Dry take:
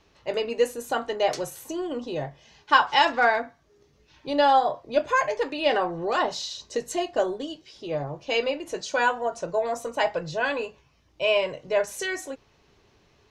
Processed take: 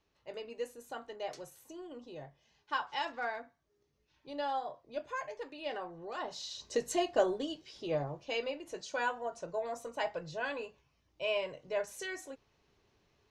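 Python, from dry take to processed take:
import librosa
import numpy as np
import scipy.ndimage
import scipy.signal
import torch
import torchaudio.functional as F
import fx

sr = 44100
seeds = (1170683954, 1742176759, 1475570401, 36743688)

y = fx.gain(x, sr, db=fx.line((6.16, -16.5), (6.7, -4.0), (7.93, -4.0), (8.37, -11.0)))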